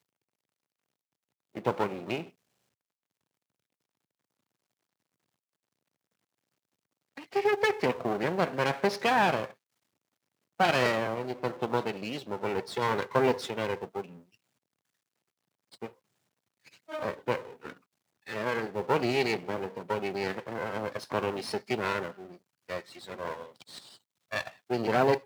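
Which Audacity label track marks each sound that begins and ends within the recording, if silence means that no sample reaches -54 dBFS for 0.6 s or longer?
1.550000	2.310000	sound
7.170000	9.540000	sound
10.590000	14.350000	sound
15.720000	15.940000	sound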